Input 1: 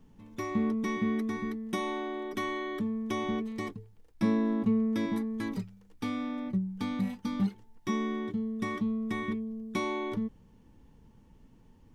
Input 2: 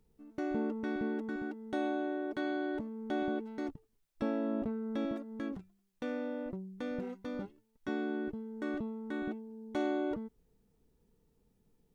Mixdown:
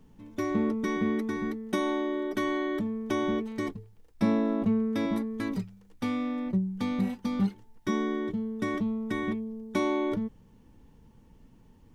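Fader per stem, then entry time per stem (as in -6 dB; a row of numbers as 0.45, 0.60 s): +1.5, +0.5 dB; 0.00, 0.00 s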